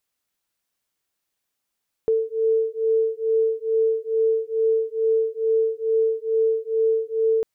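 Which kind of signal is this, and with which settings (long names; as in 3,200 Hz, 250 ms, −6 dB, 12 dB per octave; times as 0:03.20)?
two tones that beat 445 Hz, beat 2.3 Hz, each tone −21.5 dBFS 5.35 s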